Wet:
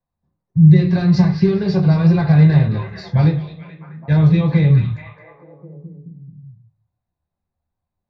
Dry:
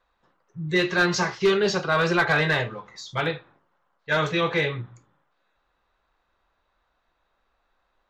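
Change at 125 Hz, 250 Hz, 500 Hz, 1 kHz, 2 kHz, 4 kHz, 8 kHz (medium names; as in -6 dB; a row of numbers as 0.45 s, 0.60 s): +20.0 dB, +14.5 dB, 0.0 dB, -4.0 dB, -8.5 dB, no reading, under -10 dB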